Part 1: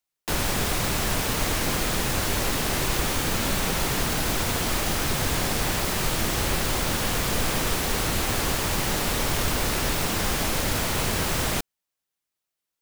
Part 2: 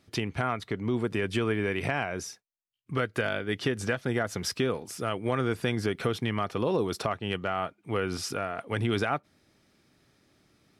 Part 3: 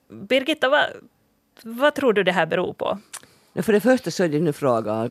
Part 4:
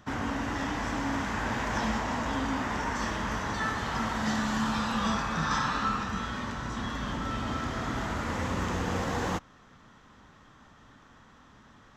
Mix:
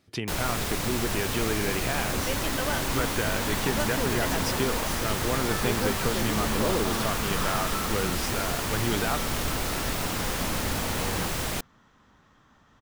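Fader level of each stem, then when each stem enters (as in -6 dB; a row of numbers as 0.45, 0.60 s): -4.5, -1.5, -14.5, -4.5 dB; 0.00, 0.00, 1.95, 1.90 s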